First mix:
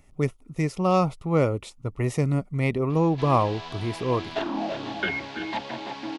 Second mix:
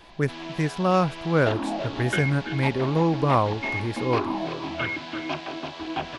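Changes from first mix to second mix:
speech: remove Butterworth band-stop 1600 Hz, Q 2.8; background: entry -2.90 s

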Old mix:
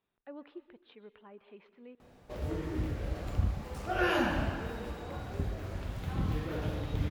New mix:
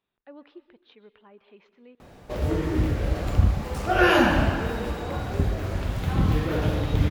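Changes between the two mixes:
speech: remove air absorption 180 m; background +10.5 dB

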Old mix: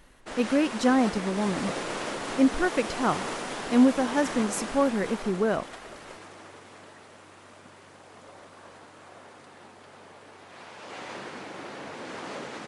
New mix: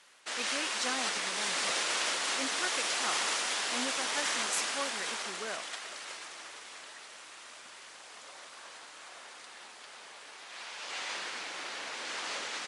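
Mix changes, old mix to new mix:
background +9.0 dB; master: add band-pass 5700 Hz, Q 0.57

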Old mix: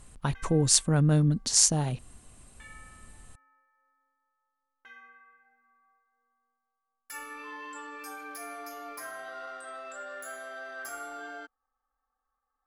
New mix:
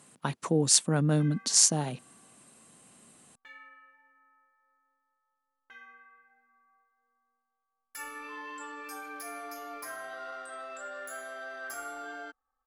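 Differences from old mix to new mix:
speech: add HPF 160 Hz 24 dB/oct; background: entry +0.85 s

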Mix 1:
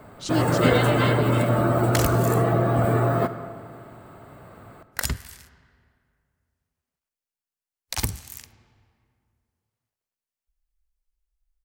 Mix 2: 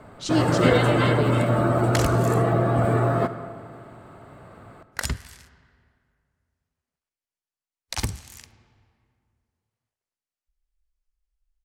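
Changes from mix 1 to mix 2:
speech: send +11.5 dB; master: add Bessel low-pass 8500 Hz, order 2

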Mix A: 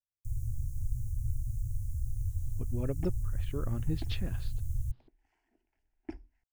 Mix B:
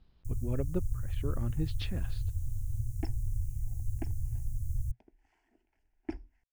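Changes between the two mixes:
speech: entry -2.30 s; second sound +4.0 dB

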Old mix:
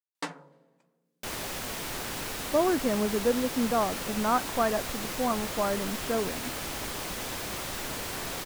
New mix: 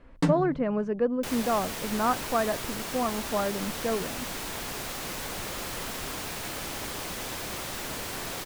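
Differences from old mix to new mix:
speech: entry -2.25 s; first sound: remove HPF 670 Hz 12 dB/oct

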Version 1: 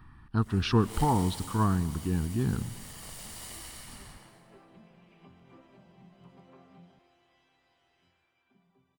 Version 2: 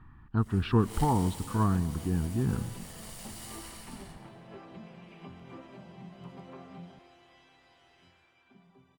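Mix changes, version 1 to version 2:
speech: add air absorption 350 m; first sound: send -9.5 dB; second sound +8.5 dB

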